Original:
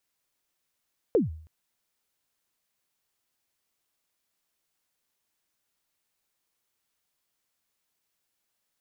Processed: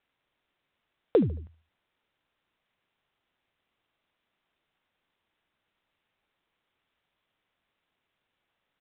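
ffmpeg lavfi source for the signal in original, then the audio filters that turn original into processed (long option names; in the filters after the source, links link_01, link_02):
-f lavfi -i "aevalsrc='0.168*pow(10,-3*t/0.54)*sin(2*PI*(520*0.148/log(79/520)*(exp(log(79/520)*min(t,0.148)/0.148)-1)+79*max(t-0.148,0)))':duration=0.32:sample_rate=44100"
-filter_complex "[0:a]asplit=2[link_01][link_02];[link_02]acompressor=threshold=-31dB:ratio=6,volume=0dB[link_03];[link_01][link_03]amix=inputs=2:normalize=0,aecho=1:1:74|148|222:0.112|0.046|0.0189" -ar 8000 -c:a adpcm_ima_wav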